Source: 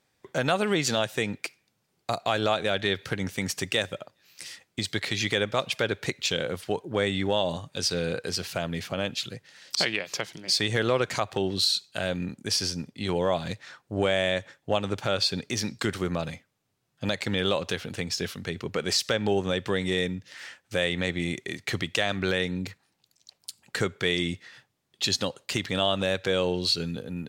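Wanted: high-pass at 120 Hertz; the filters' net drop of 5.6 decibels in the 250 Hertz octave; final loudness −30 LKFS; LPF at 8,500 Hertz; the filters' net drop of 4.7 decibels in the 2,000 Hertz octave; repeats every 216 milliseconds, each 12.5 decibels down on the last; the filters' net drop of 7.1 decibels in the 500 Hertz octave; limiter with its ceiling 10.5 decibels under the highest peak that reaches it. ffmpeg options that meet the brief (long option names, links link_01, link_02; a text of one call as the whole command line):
ffmpeg -i in.wav -af "highpass=120,lowpass=8500,equalizer=frequency=250:width_type=o:gain=-5.5,equalizer=frequency=500:width_type=o:gain=-7,equalizer=frequency=2000:width_type=o:gain=-5.5,alimiter=limit=-23dB:level=0:latency=1,aecho=1:1:216|432|648:0.237|0.0569|0.0137,volume=5.5dB" out.wav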